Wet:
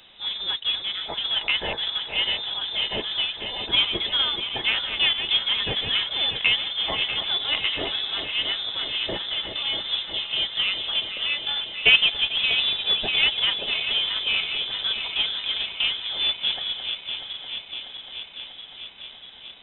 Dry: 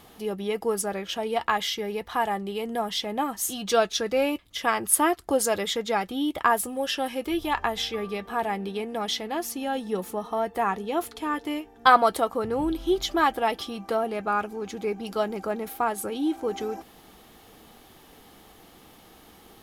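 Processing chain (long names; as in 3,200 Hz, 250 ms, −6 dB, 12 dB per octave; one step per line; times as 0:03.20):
feedback delay that plays each chunk backwards 321 ms, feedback 83%, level −9 dB
log-companded quantiser 4 bits
voice inversion scrambler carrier 3,800 Hz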